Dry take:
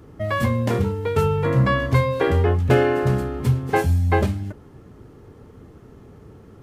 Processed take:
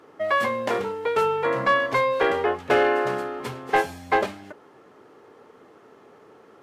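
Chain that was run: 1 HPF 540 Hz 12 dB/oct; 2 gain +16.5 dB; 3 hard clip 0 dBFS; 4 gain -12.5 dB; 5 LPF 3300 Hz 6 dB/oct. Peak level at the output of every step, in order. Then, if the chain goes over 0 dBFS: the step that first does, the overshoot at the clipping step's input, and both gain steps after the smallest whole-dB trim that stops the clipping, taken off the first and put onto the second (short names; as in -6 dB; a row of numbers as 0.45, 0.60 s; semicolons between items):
-9.0, +7.5, 0.0, -12.5, -12.5 dBFS; step 2, 7.5 dB; step 2 +8.5 dB, step 4 -4.5 dB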